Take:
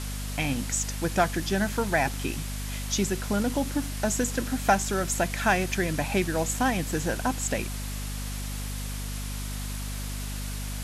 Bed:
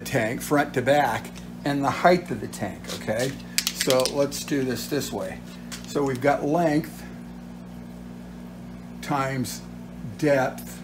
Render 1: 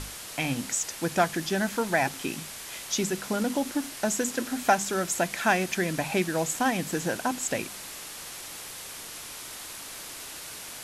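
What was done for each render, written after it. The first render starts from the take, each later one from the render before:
mains-hum notches 50/100/150/200/250 Hz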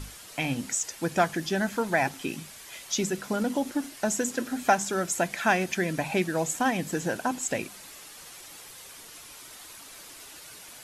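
broadband denoise 8 dB, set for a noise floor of −41 dBFS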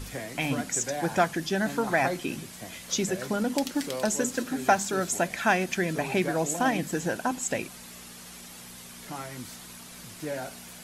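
mix in bed −13.5 dB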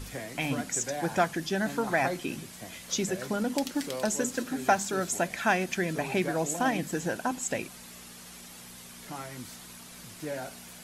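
level −2 dB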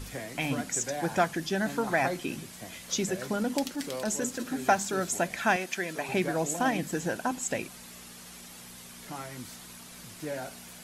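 0:03.69–0:04.45: transient designer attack −7 dB, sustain −1 dB
0:05.56–0:06.09: high-pass filter 520 Hz 6 dB per octave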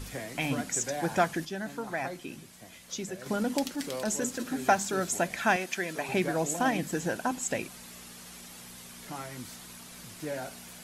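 0:01.45–0:03.26: clip gain −7 dB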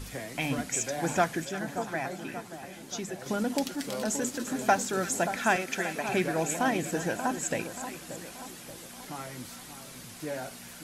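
echo with a time of its own for lows and highs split 1,400 Hz, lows 581 ms, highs 344 ms, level −10 dB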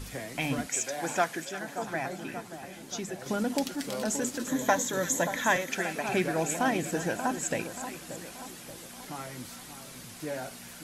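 0:00.67–0:01.82: high-pass filter 420 Hz 6 dB per octave
0:04.48–0:05.70: EQ curve with evenly spaced ripples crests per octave 1.1, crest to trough 10 dB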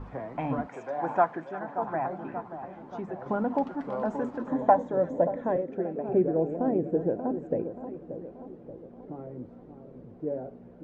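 low-pass filter sweep 980 Hz → 460 Hz, 0:04.32–0:05.65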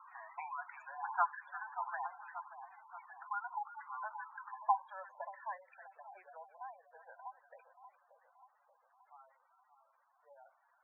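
Butterworth high-pass 960 Hz 36 dB per octave
gate on every frequency bin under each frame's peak −10 dB strong

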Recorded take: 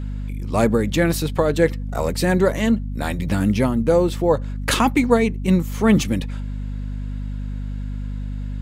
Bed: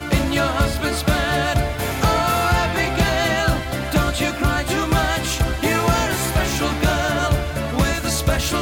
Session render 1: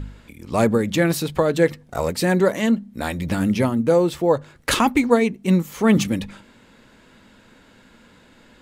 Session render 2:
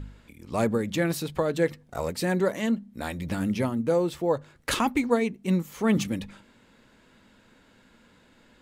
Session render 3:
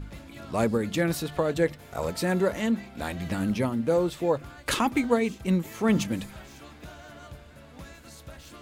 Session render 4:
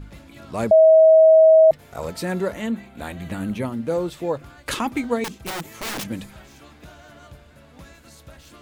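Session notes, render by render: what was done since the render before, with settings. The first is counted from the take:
hum removal 50 Hz, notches 5
level −7 dB
mix in bed −26 dB
0:00.71–0:01.71: beep over 639 Hz −8 dBFS; 0:02.54–0:03.65: parametric band 5,200 Hz −12 dB 0.32 octaves; 0:05.24–0:06.08: wrap-around overflow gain 24 dB

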